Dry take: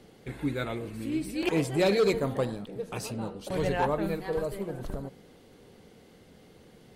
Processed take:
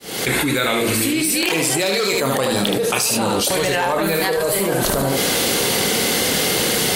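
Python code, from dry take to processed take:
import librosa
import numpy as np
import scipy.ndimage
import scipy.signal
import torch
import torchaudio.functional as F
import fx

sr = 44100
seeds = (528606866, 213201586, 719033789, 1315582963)

y = fx.fade_in_head(x, sr, length_s=0.7)
y = fx.tilt_eq(y, sr, slope=3.5)
y = fx.room_early_taps(y, sr, ms=(30, 74), db=(-9.0, -6.5))
y = fx.env_flatten(y, sr, amount_pct=100)
y = y * 10.0 ** (3.0 / 20.0)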